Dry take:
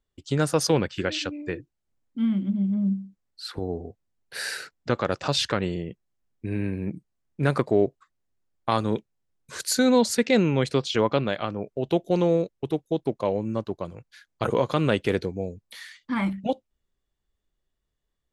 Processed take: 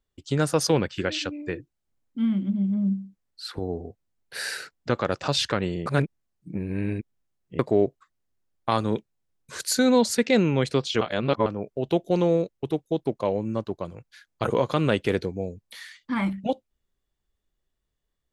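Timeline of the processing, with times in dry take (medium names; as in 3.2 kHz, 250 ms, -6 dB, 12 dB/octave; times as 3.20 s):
5.86–7.59 s: reverse
11.01–11.46 s: reverse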